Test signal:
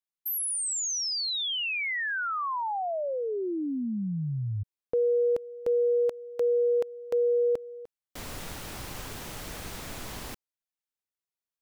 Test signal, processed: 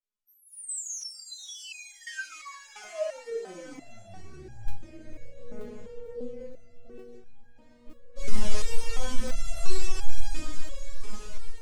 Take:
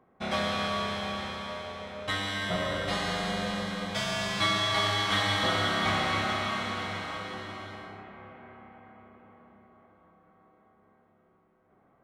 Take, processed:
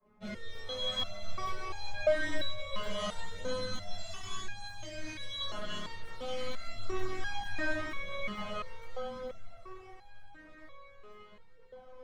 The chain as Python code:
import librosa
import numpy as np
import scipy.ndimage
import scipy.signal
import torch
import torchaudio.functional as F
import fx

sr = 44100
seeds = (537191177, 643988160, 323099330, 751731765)

y = fx.octave_divider(x, sr, octaves=1, level_db=-5.0)
y = fx.over_compress(y, sr, threshold_db=-37.0, ratio=-1.0)
y = fx.rotary(y, sr, hz=0.9)
y = scipy.signal.sosfilt(scipy.signal.butter(4, 10000.0, 'lowpass', fs=sr, output='sos'), y)
y = fx.echo_diffused(y, sr, ms=503, feedback_pct=70, wet_db=-9.5)
y = fx.room_shoebox(y, sr, seeds[0], volume_m3=220.0, walls='furnished', distance_m=5.7)
y = fx.leveller(y, sr, passes=1)
y = fx.dynamic_eq(y, sr, hz=6600.0, q=1.0, threshold_db=-45.0, ratio=4.0, max_db=5)
y = fx.chorus_voices(y, sr, voices=2, hz=0.43, base_ms=10, depth_ms=1.3, mix_pct=70)
y = fx.buffer_crackle(y, sr, first_s=0.54, period_s=0.46, block=512, kind='zero')
y = fx.resonator_held(y, sr, hz=2.9, low_hz=210.0, high_hz=820.0)
y = y * 10.0 ** (2.0 / 20.0)